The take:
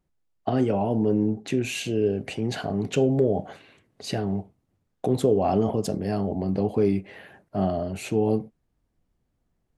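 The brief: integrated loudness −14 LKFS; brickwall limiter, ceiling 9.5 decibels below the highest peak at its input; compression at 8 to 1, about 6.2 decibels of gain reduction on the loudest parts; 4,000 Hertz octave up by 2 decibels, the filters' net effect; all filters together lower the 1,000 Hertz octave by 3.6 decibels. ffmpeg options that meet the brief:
ffmpeg -i in.wav -af "equalizer=frequency=1000:width_type=o:gain=-6,equalizer=frequency=4000:width_type=o:gain=3,acompressor=threshold=-23dB:ratio=8,volume=19.5dB,alimiter=limit=-4.5dB:level=0:latency=1" out.wav

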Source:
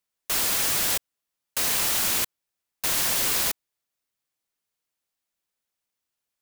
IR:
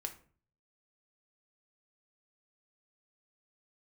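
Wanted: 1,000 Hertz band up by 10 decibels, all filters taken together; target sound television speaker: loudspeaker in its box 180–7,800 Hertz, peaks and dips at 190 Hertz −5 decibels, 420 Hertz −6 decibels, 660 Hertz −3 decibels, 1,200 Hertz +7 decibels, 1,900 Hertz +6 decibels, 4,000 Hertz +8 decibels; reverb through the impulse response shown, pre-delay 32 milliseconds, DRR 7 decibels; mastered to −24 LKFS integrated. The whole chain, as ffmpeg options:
-filter_complex "[0:a]equalizer=frequency=1000:width_type=o:gain=8,asplit=2[link_01][link_02];[1:a]atrim=start_sample=2205,adelay=32[link_03];[link_02][link_03]afir=irnorm=-1:irlink=0,volume=-5.5dB[link_04];[link_01][link_04]amix=inputs=2:normalize=0,highpass=frequency=180:width=0.5412,highpass=frequency=180:width=1.3066,equalizer=frequency=190:width_type=q:width=4:gain=-5,equalizer=frequency=420:width_type=q:width=4:gain=-6,equalizer=frequency=660:width_type=q:width=4:gain=-3,equalizer=frequency=1200:width_type=q:width=4:gain=7,equalizer=frequency=1900:width_type=q:width=4:gain=6,equalizer=frequency=4000:width_type=q:width=4:gain=8,lowpass=frequency=7800:width=0.5412,lowpass=frequency=7800:width=1.3066,volume=-1dB"

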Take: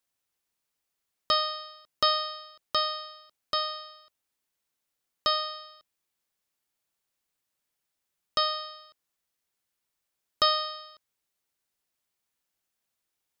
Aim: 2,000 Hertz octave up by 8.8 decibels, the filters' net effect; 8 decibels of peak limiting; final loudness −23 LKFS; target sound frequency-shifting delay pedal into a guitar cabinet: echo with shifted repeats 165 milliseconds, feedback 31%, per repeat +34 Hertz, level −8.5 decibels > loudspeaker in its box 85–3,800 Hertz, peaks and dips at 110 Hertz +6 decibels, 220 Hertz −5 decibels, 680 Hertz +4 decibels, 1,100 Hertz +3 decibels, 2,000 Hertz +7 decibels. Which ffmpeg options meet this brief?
ffmpeg -i in.wav -filter_complex "[0:a]equalizer=frequency=2000:width_type=o:gain=4,alimiter=limit=-16.5dB:level=0:latency=1,asplit=5[link_01][link_02][link_03][link_04][link_05];[link_02]adelay=165,afreqshift=34,volume=-8.5dB[link_06];[link_03]adelay=330,afreqshift=68,volume=-18.7dB[link_07];[link_04]adelay=495,afreqshift=102,volume=-28.8dB[link_08];[link_05]adelay=660,afreqshift=136,volume=-39dB[link_09];[link_01][link_06][link_07][link_08][link_09]amix=inputs=5:normalize=0,highpass=85,equalizer=frequency=110:width_type=q:width=4:gain=6,equalizer=frequency=220:width_type=q:width=4:gain=-5,equalizer=frequency=680:width_type=q:width=4:gain=4,equalizer=frequency=1100:width_type=q:width=4:gain=3,equalizer=frequency=2000:width_type=q:width=4:gain=7,lowpass=frequency=3800:width=0.5412,lowpass=frequency=3800:width=1.3066,volume=6.5dB" out.wav

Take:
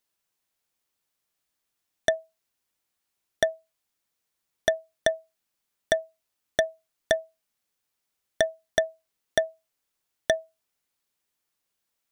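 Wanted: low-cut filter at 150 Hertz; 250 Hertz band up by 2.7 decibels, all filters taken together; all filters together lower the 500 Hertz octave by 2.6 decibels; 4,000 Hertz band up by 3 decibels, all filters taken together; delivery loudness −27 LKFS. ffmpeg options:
ffmpeg -i in.wav -af "highpass=150,equalizer=frequency=250:width_type=o:gain=6,equalizer=frequency=500:width_type=o:gain=-5,equalizer=frequency=4000:width_type=o:gain=3.5,volume=3.5dB" out.wav

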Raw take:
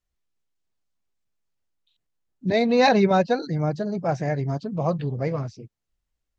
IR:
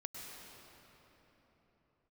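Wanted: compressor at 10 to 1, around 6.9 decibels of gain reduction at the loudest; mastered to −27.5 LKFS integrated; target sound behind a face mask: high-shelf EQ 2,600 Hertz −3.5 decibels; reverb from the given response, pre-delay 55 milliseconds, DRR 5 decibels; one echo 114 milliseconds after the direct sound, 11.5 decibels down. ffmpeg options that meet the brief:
-filter_complex "[0:a]acompressor=threshold=-20dB:ratio=10,aecho=1:1:114:0.266,asplit=2[link_01][link_02];[1:a]atrim=start_sample=2205,adelay=55[link_03];[link_02][link_03]afir=irnorm=-1:irlink=0,volume=-3.5dB[link_04];[link_01][link_04]amix=inputs=2:normalize=0,highshelf=frequency=2600:gain=-3.5,volume=-1.5dB"

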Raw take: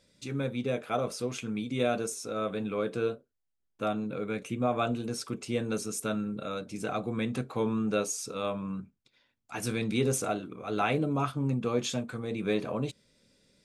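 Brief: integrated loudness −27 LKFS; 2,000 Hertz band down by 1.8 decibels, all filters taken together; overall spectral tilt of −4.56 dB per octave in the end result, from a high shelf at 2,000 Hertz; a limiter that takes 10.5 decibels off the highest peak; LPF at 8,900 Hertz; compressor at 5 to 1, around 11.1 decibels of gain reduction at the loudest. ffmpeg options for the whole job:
ffmpeg -i in.wav -af "lowpass=8900,highshelf=frequency=2000:gain=8,equalizer=frequency=2000:width_type=o:gain=-8.5,acompressor=threshold=-36dB:ratio=5,volume=16.5dB,alimiter=limit=-18dB:level=0:latency=1" out.wav

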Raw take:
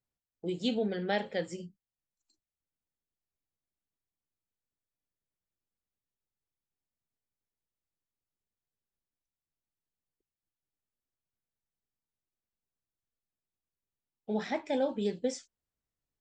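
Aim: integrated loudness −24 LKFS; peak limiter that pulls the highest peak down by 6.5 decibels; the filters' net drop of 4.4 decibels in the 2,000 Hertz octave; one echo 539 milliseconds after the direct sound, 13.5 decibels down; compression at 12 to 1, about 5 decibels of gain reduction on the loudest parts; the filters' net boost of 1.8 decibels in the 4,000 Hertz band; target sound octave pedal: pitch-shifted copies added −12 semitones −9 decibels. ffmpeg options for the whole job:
ffmpeg -i in.wav -filter_complex "[0:a]equalizer=frequency=2000:width_type=o:gain=-6,equalizer=frequency=4000:width_type=o:gain=4.5,acompressor=threshold=-30dB:ratio=12,alimiter=level_in=4.5dB:limit=-24dB:level=0:latency=1,volume=-4.5dB,aecho=1:1:539:0.211,asplit=2[link_01][link_02];[link_02]asetrate=22050,aresample=44100,atempo=2,volume=-9dB[link_03];[link_01][link_03]amix=inputs=2:normalize=0,volume=14.5dB" out.wav

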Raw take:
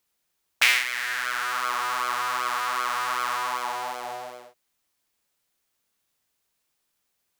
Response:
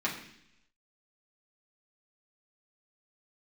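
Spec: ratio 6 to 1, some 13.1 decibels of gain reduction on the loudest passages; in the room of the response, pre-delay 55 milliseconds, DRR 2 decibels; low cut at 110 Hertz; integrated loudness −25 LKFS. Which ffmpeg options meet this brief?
-filter_complex "[0:a]highpass=110,acompressor=threshold=-28dB:ratio=6,asplit=2[link_01][link_02];[1:a]atrim=start_sample=2205,adelay=55[link_03];[link_02][link_03]afir=irnorm=-1:irlink=0,volume=-9.5dB[link_04];[link_01][link_04]amix=inputs=2:normalize=0,volume=5dB"

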